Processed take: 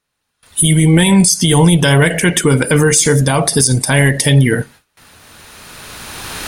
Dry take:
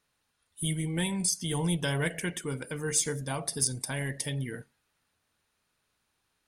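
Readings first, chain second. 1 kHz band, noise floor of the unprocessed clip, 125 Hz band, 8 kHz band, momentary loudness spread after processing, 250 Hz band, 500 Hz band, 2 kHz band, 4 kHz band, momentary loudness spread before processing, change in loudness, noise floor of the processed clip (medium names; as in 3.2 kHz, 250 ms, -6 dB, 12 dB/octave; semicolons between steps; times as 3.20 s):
+20.5 dB, -78 dBFS, +21.5 dB, +16.5 dB, 14 LU, +21.5 dB, +21.0 dB, +20.0 dB, +18.5 dB, 8 LU, +19.5 dB, -71 dBFS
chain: recorder AGC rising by 14 dB/s; gate with hold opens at -57 dBFS; loudness maximiser +24 dB; trim -1 dB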